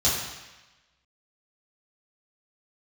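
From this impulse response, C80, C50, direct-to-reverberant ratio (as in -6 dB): 4.0 dB, 2.0 dB, -8.5 dB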